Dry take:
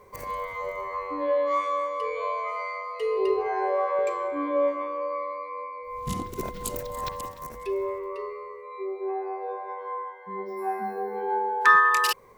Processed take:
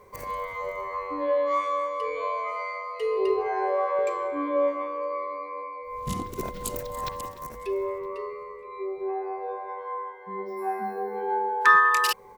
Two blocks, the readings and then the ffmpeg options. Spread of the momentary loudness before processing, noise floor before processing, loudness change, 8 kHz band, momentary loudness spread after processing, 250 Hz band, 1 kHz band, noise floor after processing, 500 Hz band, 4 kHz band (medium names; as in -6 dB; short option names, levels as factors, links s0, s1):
12 LU, -42 dBFS, 0.0 dB, 0.0 dB, 13 LU, 0.0 dB, 0.0 dB, -42 dBFS, 0.0 dB, 0.0 dB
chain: -filter_complex "[0:a]asplit=2[s0][s1];[s1]adelay=967,lowpass=f=1800:p=1,volume=0.0668,asplit=2[s2][s3];[s3]adelay=967,lowpass=f=1800:p=1,volume=0.49,asplit=2[s4][s5];[s5]adelay=967,lowpass=f=1800:p=1,volume=0.49[s6];[s0][s2][s4][s6]amix=inputs=4:normalize=0"